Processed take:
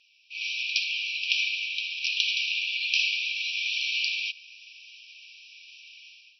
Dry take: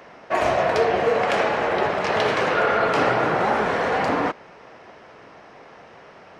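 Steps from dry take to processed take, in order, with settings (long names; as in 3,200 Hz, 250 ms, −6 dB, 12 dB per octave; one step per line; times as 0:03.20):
linear-phase brick-wall band-pass 2,300–5,900 Hz
automatic gain control gain up to 15 dB
level −4 dB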